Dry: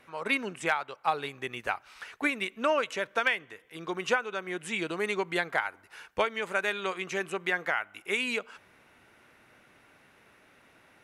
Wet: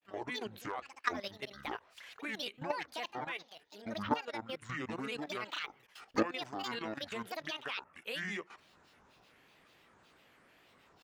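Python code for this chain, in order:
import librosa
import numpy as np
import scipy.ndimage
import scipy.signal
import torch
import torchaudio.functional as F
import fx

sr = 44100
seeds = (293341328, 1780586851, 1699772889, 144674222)

y = fx.granulator(x, sr, seeds[0], grain_ms=164.0, per_s=16.0, spray_ms=24.0, spread_st=12)
y = fx.level_steps(y, sr, step_db=13)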